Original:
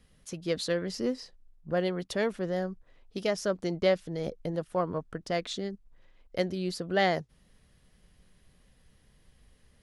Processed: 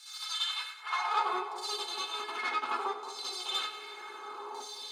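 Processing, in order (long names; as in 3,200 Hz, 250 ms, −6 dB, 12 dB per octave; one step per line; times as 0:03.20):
compressor on every frequency bin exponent 0.4
de-essing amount 80%
transient designer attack +2 dB, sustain −7 dB
stiff-string resonator 210 Hz, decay 0.21 s, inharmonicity 0.002
auto-filter band-pass saw down 0.33 Hz 440–2,800 Hz
tube saturation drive 37 dB, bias 0.4
high-pass filter sweep 730 Hz → 140 Hz, 0:01.44–0:02.86
echo with a time of its own for lows and highs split 560 Hz, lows 432 ms, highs 185 ms, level −12 dB
convolution reverb RT60 0.50 s, pre-delay 113 ms, DRR −7.5 dB
wrong playback speed 7.5 ips tape played at 15 ips
level +7.5 dB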